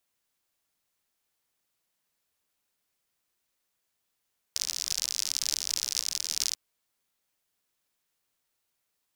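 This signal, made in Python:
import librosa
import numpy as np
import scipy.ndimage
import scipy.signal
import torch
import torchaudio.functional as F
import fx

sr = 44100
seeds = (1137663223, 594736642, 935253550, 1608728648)

y = fx.rain(sr, seeds[0], length_s=1.99, drops_per_s=69.0, hz=5400.0, bed_db=-29)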